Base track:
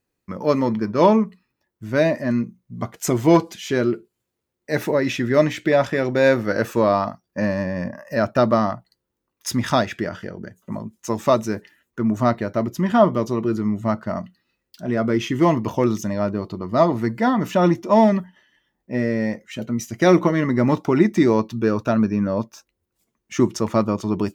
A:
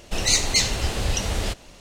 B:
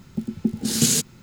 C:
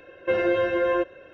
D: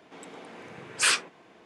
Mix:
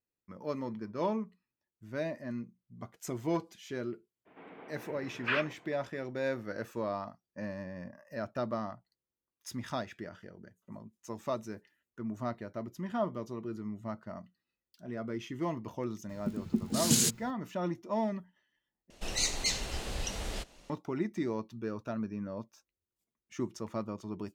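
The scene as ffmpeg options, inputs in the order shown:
-filter_complex "[0:a]volume=0.133[s0];[4:a]lowpass=f=2600:w=0.5412,lowpass=f=2600:w=1.3066[s1];[1:a]equalizer=f=92:t=o:w=0.77:g=-7.5[s2];[s0]asplit=2[s3][s4];[s3]atrim=end=18.904[s5];[s2]atrim=end=1.8,asetpts=PTS-STARTPTS,volume=0.282[s6];[s4]atrim=start=20.696[s7];[s1]atrim=end=1.65,asetpts=PTS-STARTPTS,volume=0.562,afade=t=in:d=0.02,afade=t=out:st=1.63:d=0.02,adelay=187425S[s8];[2:a]atrim=end=1.22,asetpts=PTS-STARTPTS,volume=0.447,afade=t=in:d=0.004:c=hsin,afade=t=out:st=1.216:d=0.004:c=hsin,adelay=16090[s9];[s5][s6]acrossfade=d=0.004:c1=hsin:c2=hsin[s10];[s10][s7]acrossfade=d=0.004:c1=hsin:c2=hsin[s11];[s11][s8][s9]amix=inputs=3:normalize=0"

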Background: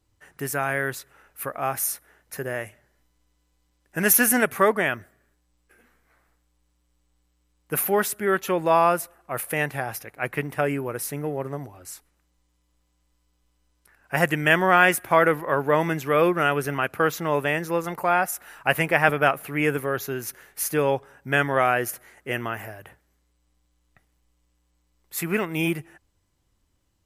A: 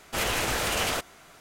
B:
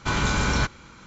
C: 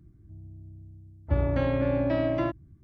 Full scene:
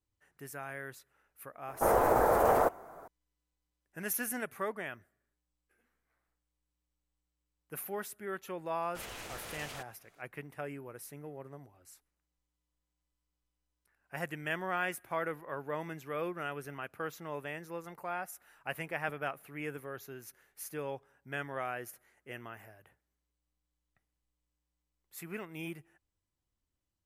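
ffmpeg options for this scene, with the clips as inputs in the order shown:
-filter_complex "[1:a]asplit=2[s0][s1];[0:a]volume=0.141[s2];[s0]firequalizer=gain_entry='entry(160,0);entry(460,11);entry(840,11);entry(2800,-22);entry(15000,2)':delay=0.05:min_phase=1,atrim=end=1.4,asetpts=PTS-STARTPTS,volume=0.668,afade=t=in:d=0.004:c=hsin,afade=t=out:st=1.396:d=0.004:c=hsin,adelay=1680[s3];[s1]atrim=end=1.4,asetpts=PTS-STARTPTS,volume=0.133,afade=t=in:d=0.004:c=hsin,afade=t=out:st=1.396:d=0.004:c=hsin,adelay=388962S[s4];[s2][s3][s4]amix=inputs=3:normalize=0"

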